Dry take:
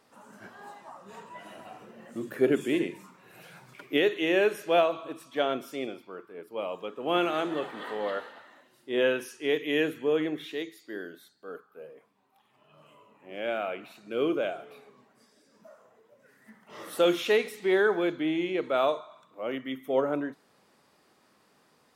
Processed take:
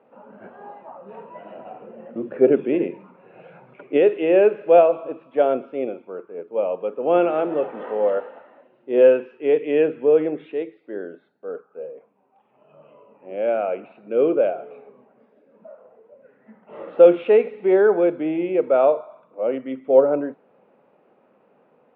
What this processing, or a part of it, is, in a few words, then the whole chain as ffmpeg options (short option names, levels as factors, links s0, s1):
kitchen radio: -af "lowpass=1100,highpass=190,equalizer=f=310:t=q:w=4:g=-4,equalizer=f=520:t=q:w=4:g=6,equalizer=f=1100:t=q:w=4:g=-6,equalizer=f=1800:t=q:w=4:g=-5,equalizer=f=2600:t=q:w=4:g=7,lowpass=f=3400:w=0.5412,lowpass=f=3400:w=1.3066,volume=2.66"